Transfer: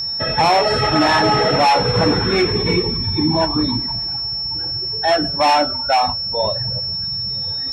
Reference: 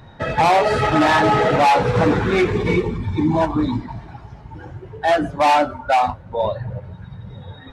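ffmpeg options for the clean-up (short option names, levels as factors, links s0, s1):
-af "bandreject=f=5400:w=30"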